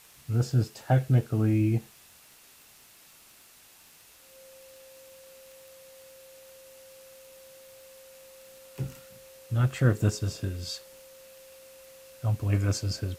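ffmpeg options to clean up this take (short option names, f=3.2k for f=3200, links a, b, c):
-af "adeclick=t=4,bandreject=f=530:w=30,afwtdn=0.002"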